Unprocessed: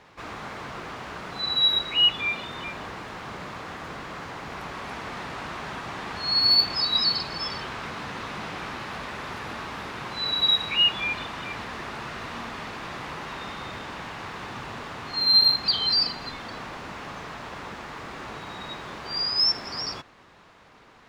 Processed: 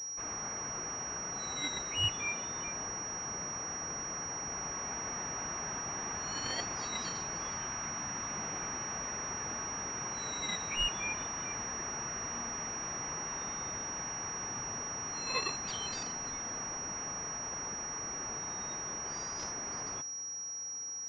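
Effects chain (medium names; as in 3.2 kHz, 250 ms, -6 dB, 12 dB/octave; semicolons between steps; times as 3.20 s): 7.49–8.31 s: peaking EQ 450 Hz -9.5 dB 0.28 oct; class-D stage that switches slowly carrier 5.7 kHz; trim -6.5 dB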